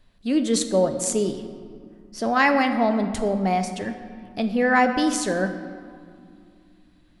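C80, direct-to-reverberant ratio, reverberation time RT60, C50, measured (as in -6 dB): 10.0 dB, 7.0 dB, 2.3 s, 9.0 dB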